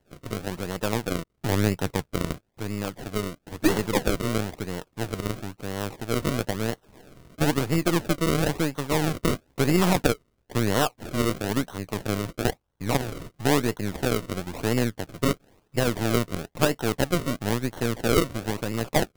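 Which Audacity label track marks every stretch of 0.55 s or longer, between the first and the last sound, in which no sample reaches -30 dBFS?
6.730000	7.400000	silence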